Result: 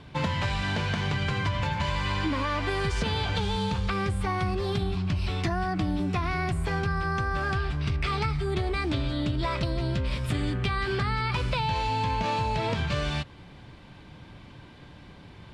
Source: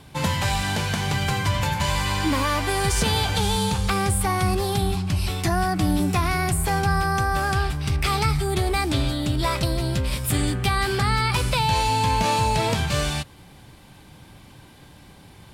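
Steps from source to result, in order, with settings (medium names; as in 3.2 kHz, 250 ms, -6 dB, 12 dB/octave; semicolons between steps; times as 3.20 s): low-pass 3.8 kHz 12 dB/octave; band-stop 800 Hz, Q 12; compression, threshold -24 dBFS, peak gain reduction 7.5 dB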